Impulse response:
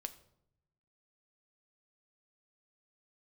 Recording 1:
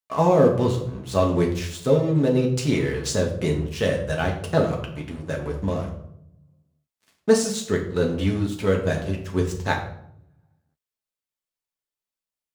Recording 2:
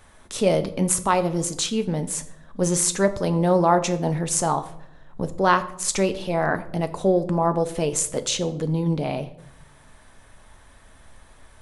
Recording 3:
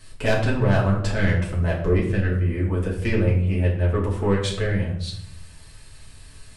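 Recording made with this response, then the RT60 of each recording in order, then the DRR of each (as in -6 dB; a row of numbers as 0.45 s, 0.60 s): 2; 0.75 s, 0.75 s, 0.75 s; -0.5 dB, 9.0 dB, -5.5 dB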